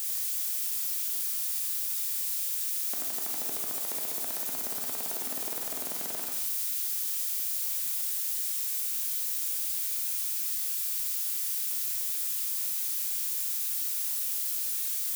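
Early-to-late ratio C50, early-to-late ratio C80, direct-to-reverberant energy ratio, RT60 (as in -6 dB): 4.0 dB, 6.0 dB, 0.5 dB, no single decay rate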